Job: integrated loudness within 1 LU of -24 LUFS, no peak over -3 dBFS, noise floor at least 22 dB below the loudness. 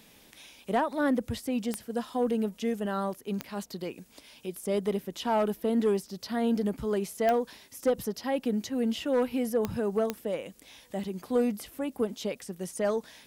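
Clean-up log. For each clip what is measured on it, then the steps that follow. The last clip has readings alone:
clicks 5; loudness -30.5 LUFS; peak -14.5 dBFS; loudness target -24.0 LUFS
-> de-click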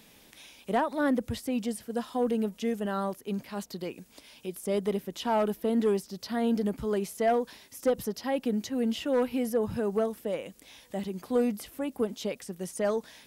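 clicks 0; loudness -30.5 LUFS; peak -17.0 dBFS; loudness target -24.0 LUFS
-> gain +6.5 dB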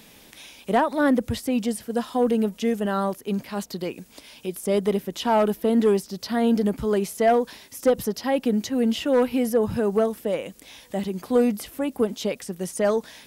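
loudness -24.0 LUFS; peak -10.5 dBFS; noise floor -51 dBFS

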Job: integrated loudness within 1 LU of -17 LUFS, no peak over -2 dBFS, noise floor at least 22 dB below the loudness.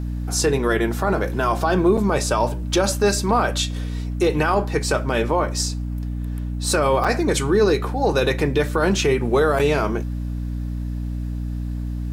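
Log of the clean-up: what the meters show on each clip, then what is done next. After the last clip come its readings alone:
dropouts 3; longest dropout 5.7 ms; hum 60 Hz; harmonics up to 300 Hz; hum level -24 dBFS; loudness -21.0 LUFS; peak -6.0 dBFS; loudness target -17.0 LUFS
-> interpolate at 1.97/7.04/9.59, 5.7 ms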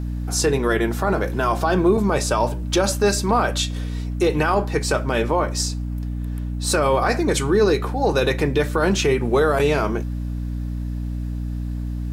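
dropouts 0; hum 60 Hz; harmonics up to 300 Hz; hum level -24 dBFS
-> de-hum 60 Hz, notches 5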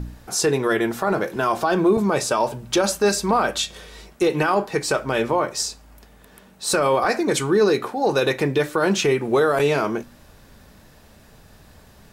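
hum none; loudness -21.0 LUFS; peak -7.0 dBFS; loudness target -17.0 LUFS
-> gain +4 dB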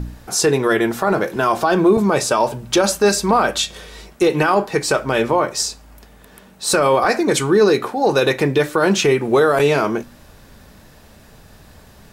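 loudness -17.0 LUFS; peak -3.0 dBFS; noise floor -46 dBFS

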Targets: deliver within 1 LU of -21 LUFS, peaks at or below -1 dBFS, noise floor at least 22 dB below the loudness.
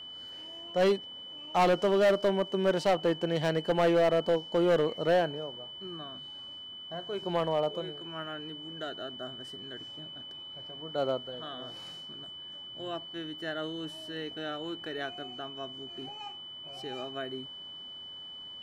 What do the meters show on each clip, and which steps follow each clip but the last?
clipped 1.3%; flat tops at -20.0 dBFS; steady tone 3000 Hz; tone level -42 dBFS; loudness -32.0 LUFS; peak -20.0 dBFS; loudness target -21.0 LUFS
-> clip repair -20 dBFS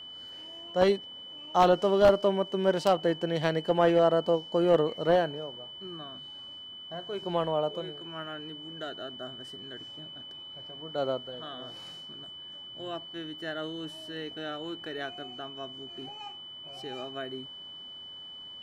clipped 0.0%; steady tone 3000 Hz; tone level -42 dBFS
-> notch 3000 Hz, Q 30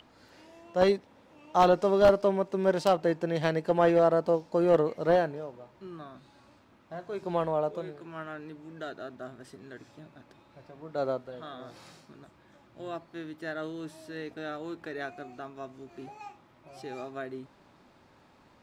steady tone none; loudness -28.5 LUFS; peak -10.5 dBFS; loudness target -21.0 LUFS
-> gain +7.5 dB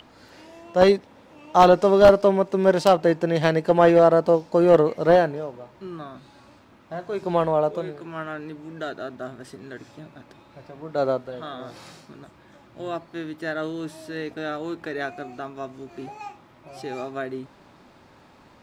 loudness -21.0 LUFS; peak -3.0 dBFS; noise floor -53 dBFS

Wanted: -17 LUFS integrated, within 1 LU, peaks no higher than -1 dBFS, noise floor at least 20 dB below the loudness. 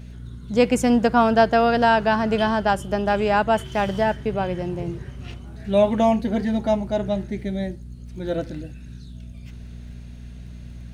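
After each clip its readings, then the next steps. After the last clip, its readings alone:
ticks 21/s; hum 60 Hz; harmonics up to 240 Hz; hum level -35 dBFS; loudness -21.0 LUFS; peak -4.5 dBFS; loudness target -17.0 LUFS
-> de-click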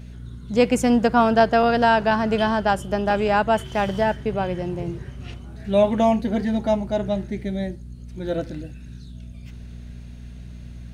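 ticks 0/s; hum 60 Hz; harmonics up to 180 Hz; hum level -36 dBFS
-> de-hum 60 Hz, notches 3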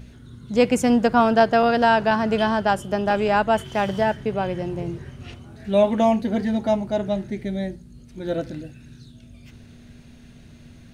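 hum none; loudness -21.5 LUFS; peak -4.5 dBFS; loudness target -17.0 LUFS
-> gain +4.5 dB; limiter -1 dBFS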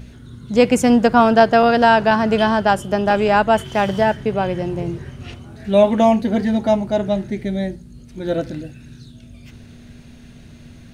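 loudness -17.0 LUFS; peak -1.0 dBFS; noise floor -42 dBFS

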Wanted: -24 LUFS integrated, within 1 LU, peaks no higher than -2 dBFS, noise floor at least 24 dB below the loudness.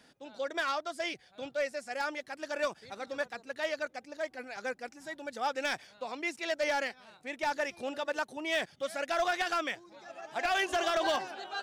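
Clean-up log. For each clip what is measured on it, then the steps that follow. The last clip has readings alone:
clipped 0.5%; flat tops at -24.0 dBFS; loudness -34.5 LUFS; peak -24.0 dBFS; loudness target -24.0 LUFS
-> clip repair -24 dBFS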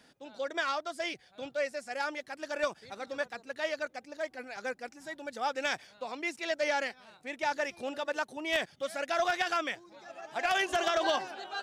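clipped 0.0%; loudness -34.0 LUFS; peak -15.0 dBFS; loudness target -24.0 LUFS
-> gain +10 dB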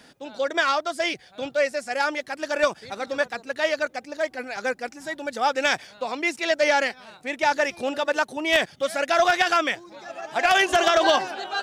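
loudness -24.0 LUFS; peak -5.0 dBFS; noise floor -52 dBFS

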